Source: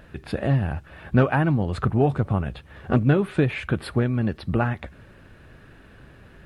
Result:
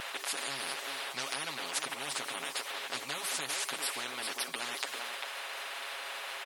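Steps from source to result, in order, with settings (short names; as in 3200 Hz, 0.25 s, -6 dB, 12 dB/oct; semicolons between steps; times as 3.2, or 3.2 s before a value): transient shaper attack +1 dB, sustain +5 dB; HPF 830 Hz 24 dB/oct; comb 7.3 ms, depth 97%; outdoor echo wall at 68 m, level -14 dB; spectral compressor 10:1; gain -6 dB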